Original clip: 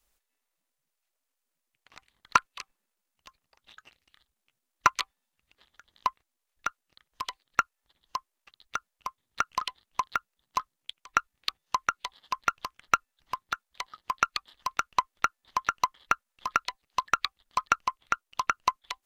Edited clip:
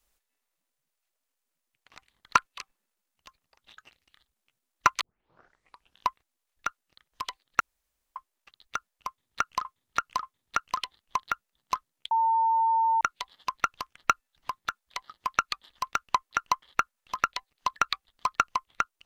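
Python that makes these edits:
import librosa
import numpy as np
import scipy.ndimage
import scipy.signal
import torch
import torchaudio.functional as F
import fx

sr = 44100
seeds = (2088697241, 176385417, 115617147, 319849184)

y = fx.edit(x, sr, fx.tape_start(start_s=5.01, length_s=1.07),
    fx.room_tone_fill(start_s=7.6, length_s=0.56),
    fx.repeat(start_s=9.07, length_s=0.58, count=3),
    fx.bleep(start_s=10.95, length_s=0.9, hz=903.0, db=-20.5),
    fx.cut(start_s=15.15, length_s=0.48), tone=tone)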